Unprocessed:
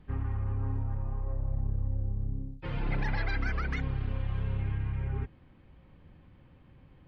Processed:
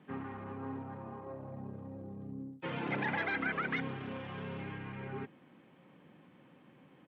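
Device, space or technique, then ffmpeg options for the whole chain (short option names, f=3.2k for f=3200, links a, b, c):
Bluetooth headset: -af "highpass=f=180:w=0.5412,highpass=f=180:w=1.3066,aresample=8000,aresample=44100,volume=2.5dB" -ar 32000 -c:a sbc -b:a 64k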